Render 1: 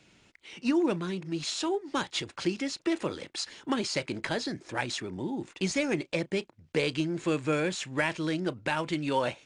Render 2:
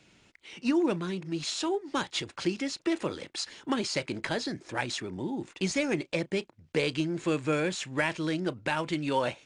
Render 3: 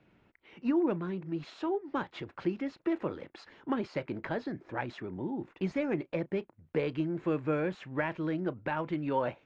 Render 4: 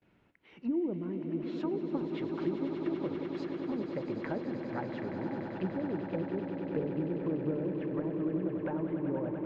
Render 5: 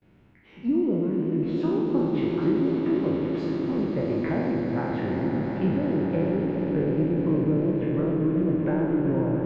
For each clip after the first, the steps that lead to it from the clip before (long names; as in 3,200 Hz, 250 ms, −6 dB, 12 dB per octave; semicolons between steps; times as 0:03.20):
no processing that can be heard
low-pass filter 1,600 Hz 12 dB per octave; level −2 dB
treble cut that deepens with the level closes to 440 Hz, closed at −28 dBFS; noise gate with hold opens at −57 dBFS; on a send: echo that builds up and dies away 97 ms, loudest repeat 8, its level −10.5 dB; on the sum: level −2.5 dB
peak hold with a decay on every bin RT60 1.26 s; low-shelf EQ 270 Hz +10 dB; feedback echo with a swinging delay time 132 ms, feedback 77%, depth 173 cents, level −10 dB; level +1.5 dB